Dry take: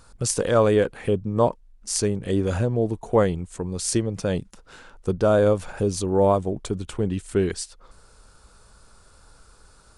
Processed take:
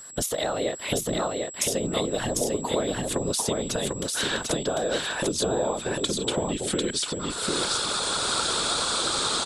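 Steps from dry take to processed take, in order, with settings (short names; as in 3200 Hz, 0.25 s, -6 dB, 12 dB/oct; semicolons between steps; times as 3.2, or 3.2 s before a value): speed glide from 118% -> 93%; recorder AGC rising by 36 dB/s; HPF 210 Hz 12 dB/oct; bell 3600 Hz +12.5 dB 0.54 oct; in parallel at -0.5 dB: limiter -11.5 dBFS, peak gain reduction 9.5 dB; on the sum: compressor 4:1, threshold -20 dBFS, peak gain reduction 9.5 dB; whisperiser; whine 7700 Hz -36 dBFS; on a send: echo 0.747 s -3 dB; on the sum: gain -5 dB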